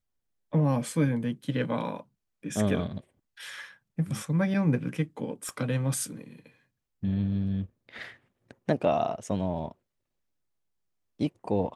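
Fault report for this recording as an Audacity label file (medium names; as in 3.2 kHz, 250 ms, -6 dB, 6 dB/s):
5.490000	5.490000	pop -24 dBFS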